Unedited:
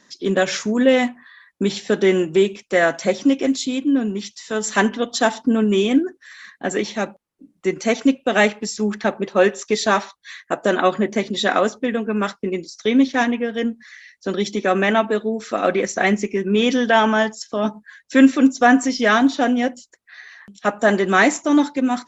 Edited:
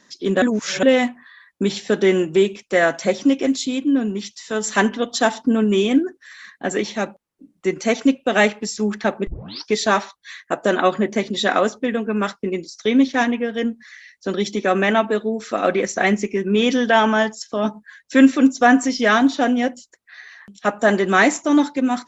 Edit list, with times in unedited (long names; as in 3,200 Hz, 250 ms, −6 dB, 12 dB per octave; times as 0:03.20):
0:00.42–0:00.83: reverse
0:09.27: tape start 0.45 s